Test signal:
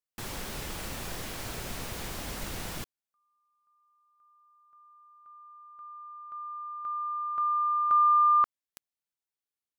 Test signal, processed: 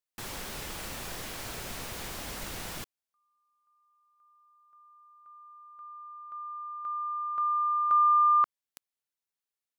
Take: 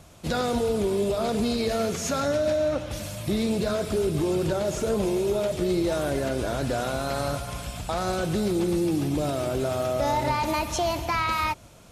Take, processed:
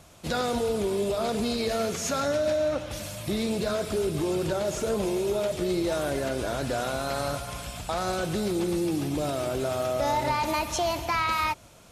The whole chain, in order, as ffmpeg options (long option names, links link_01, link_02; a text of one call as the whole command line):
ffmpeg -i in.wav -af "lowshelf=frequency=380:gain=-4.5" out.wav